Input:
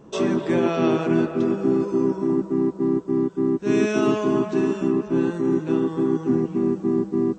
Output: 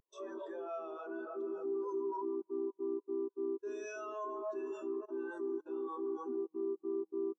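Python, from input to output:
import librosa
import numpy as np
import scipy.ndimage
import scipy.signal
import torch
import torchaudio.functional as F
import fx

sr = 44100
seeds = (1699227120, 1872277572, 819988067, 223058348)

p1 = scipy.signal.sosfilt(scipy.signal.butter(2, 790.0, 'highpass', fs=sr, output='sos'), x)
p2 = np.clip(p1, -10.0 ** (-31.0 / 20.0), 10.0 ** (-31.0 / 20.0))
p3 = p1 + (p2 * 10.0 ** (-3.0 / 20.0))
p4 = fx.peak_eq(p3, sr, hz=2200.0, db=-10.5, octaves=0.36)
p5 = fx.quant_dither(p4, sr, seeds[0], bits=10, dither='none')
p6 = fx.high_shelf(p5, sr, hz=5700.0, db=11.5)
p7 = fx.level_steps(p6, sr, step_db=20)
p8 = fx.spectral_expand(p7, sr, expansion=2.5)
y = p8 * 10.0 ** (-1.0 / 20.0)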